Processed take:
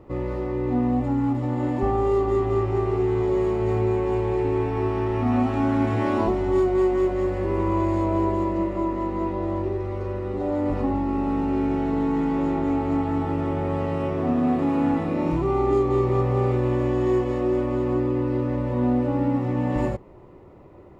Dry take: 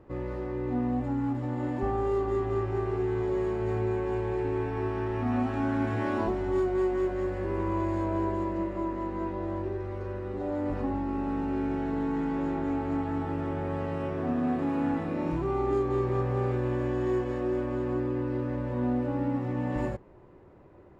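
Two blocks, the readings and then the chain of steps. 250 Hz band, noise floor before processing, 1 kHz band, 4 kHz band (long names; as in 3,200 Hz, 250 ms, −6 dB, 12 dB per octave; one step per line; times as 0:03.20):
+6.5 dB, −52 dBFS, +6.5 dB, can't be measured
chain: notch filter 1,600 Hz, Q 5
level +6.5 dB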